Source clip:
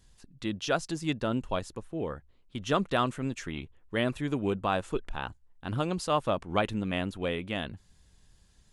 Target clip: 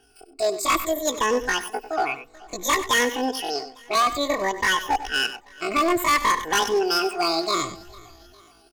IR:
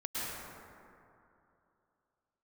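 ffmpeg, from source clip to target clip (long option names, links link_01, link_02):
-filter_complex "[0:a]afftfilt=real='re*pow(10,21/40*sin(2*PI*(1.1*log(max(b,1)*sr/1024/100)/log(2)-(-0.58)*(pts-256)/sr)))':imag='im*pow(10,21/40*sin(2*PI*(1.1*log(max(b,1)*sr/1024/100)/log(2)-(-0.58)*(pts-256)/sr)))':win_size=1024:overlap=0.75,aecho=1:1:5.3:0.6,asplit=2[link_01][link_02];[link_02]highpass=frequency=720:poles=1,volume=8dB,asoftclip=type=tanh:threshold=-8.5dB[link_03];[link_01][link_03]amix=inputs=2:normalize=0,lowpass=frequency=1900:poles=1,volume=-6dB,asoftclip=type=hard:threshold=-21dB,asplit=2[link_04][link_05];[link_05]aecho=0:1:428|856|1284:0.0708|0.0347|0.017[link_06];[link_04][link_06]amix=inputs=2:normalize=0,asetrate=85689,aresample=44100,atempo=0.514651,asplit=2[link_07][link_08];[link_08]aecho=0:1:97:0.224[link_09];[link_07][link_09]amix=inputs=2:normalize=0,acontrast=32,adynamicequalizer=threshold=0.0126:dfrequency=7000:dqfactor=0.7:tfrequency=7000:tqfactor=0.7:attack=5:release=100:ratio=0.375:range=2:mode=boostabove:tftype=highshelf"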